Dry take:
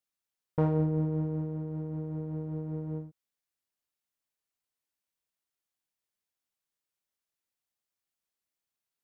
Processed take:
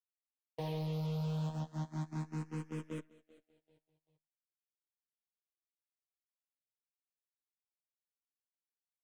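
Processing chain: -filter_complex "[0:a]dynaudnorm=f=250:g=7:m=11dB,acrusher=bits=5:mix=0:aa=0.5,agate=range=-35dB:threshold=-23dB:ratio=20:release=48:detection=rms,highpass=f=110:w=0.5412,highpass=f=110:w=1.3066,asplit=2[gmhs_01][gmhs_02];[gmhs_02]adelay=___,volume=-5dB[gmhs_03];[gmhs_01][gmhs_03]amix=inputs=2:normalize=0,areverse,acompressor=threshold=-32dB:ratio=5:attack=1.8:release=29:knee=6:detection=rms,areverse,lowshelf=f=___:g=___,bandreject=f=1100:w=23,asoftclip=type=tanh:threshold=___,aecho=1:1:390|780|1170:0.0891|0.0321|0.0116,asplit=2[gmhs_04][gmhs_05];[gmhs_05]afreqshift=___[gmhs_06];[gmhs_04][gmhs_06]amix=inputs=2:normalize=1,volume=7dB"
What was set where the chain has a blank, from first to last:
14, 180, -10.5, -37dB, 0.29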